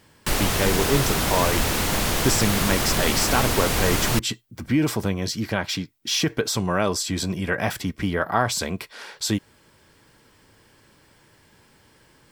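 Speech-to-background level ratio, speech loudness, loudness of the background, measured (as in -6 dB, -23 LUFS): -2.5 dB, -25.0 LUFS, -22.5 LUFS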